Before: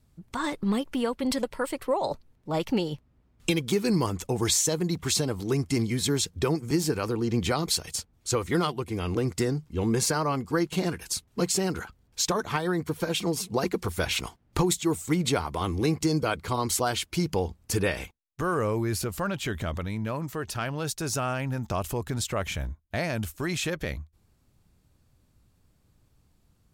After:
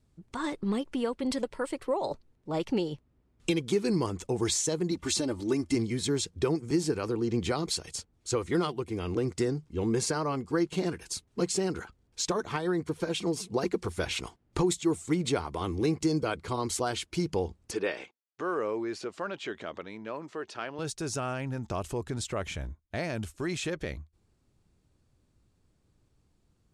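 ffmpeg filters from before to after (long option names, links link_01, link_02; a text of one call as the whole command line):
ffmpeg -i in.wav -filter_complex "[0:a]asettb=1/sr,asplit=3[link_01][link_02][link_03];[link_01]atrim=end=4.914[link_04];[link_02]atrim=start=4.91:end=5.75,asetpts=PTS-STARTPTS,afade=type=in:duration=0.004:curve=qsin,afade=type=out:start_time=0.836:duration=0.004:curve=qsin,aecho=1:1:3.4:0.62,atrim=end_sample=37044[link_05];[link_03]atrim=start=5.746[link_06];[link_04][link_05]acrossfade=duration=0.004:curve1=hsin:curve2=qsin[link_07];[link_07][link_06]acrossfade=duration=0.004:curve1=qsin:curve2=hsin,asettb=1/sr,asplit=3[link_08][link_09][link_10];[link_08]atrim=end=17.714[link_11];[link_09]atrim=start=17.71:end=20.79,asetpts=PTS-STARTPTS,afade=type=in:duration=0.004:curve=qsin,afade=type=out:start_time=3.076:duration=0.004:curve=qsin,highpass=320,lowpass=4800[link_12];[link_10]atrim=start=20.786[link_13];[link_11][link_12]acrossfade=duration=0.004:curve1=hsin:curve2=qsin[link_14];[link_14][link_13]acrossfade=duration=0.004:curve1=qsin:curve2=hsin,lowpass=frequency=10000:width=0.5412,lowpass=frequency=10000:width=1.3066,equalizer=frequency=370:width_type=o:width=0.85:gain=5,volume=-5dB" out.wav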